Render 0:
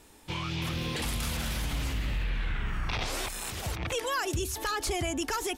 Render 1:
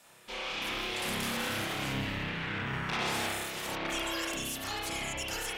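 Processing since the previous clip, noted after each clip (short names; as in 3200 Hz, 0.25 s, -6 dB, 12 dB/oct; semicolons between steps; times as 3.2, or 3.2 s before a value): spectral gate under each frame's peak -10 dB weak; spring tank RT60 1.1 s, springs 30 ms, chirp 40 ms, DRR -5 dB; tube stage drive 25 dB, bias 0.4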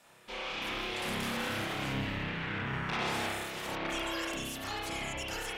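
high shelf 4400 Hz -7 dB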